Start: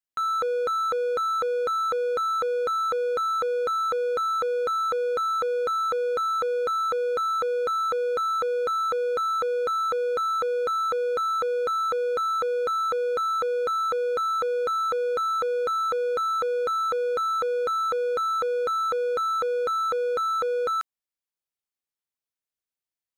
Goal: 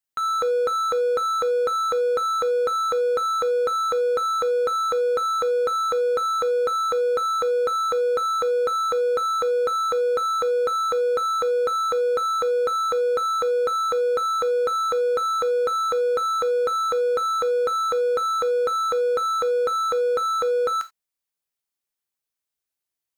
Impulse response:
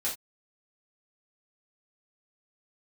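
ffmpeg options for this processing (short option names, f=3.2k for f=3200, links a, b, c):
-filter_complex "[0:a]asplit=2[a][b];[1:a]atrim=start_sample=2205,afade=t=out:st=0.14:d=0.01,atrim=end_sample=6615,highshelf=f=4.8k:g=11.5[c];[b][c]afir=irnorm=-1:irlink=0,volume=-14dB[d];[a][d]amix=inputs=2:normalize=0,volume=1.5dB"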